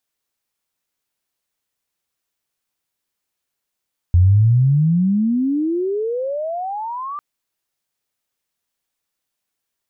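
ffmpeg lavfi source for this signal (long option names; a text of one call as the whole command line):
ffmpeg -f lavfi -i "aevalsrc='pow(10,(-8-17*t/3.05)/20)*sin(2*PI*85*3.05/log(1200/85)*(exp(log(1200/85)*t/3.05)-1))':duration=3.05:sample_rate=44100" out.wav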